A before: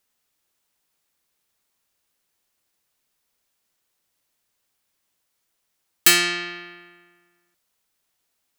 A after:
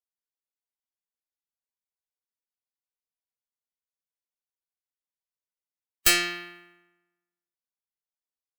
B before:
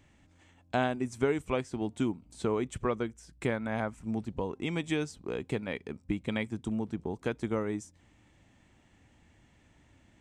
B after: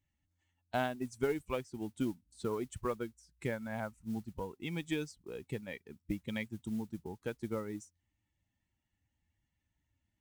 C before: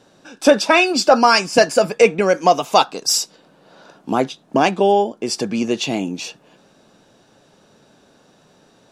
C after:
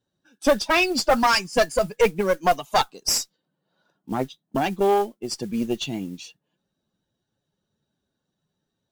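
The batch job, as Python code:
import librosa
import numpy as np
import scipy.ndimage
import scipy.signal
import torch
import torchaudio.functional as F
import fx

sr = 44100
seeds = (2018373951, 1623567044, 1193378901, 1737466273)

y = fx.bin_expand(x, sr, power=1.5)
y = fx.mod_noise(y, sr, seeds[0], snr_db=25)
y = fx.tube_stage(y, sr, drive_db=11.0, bias=0.6)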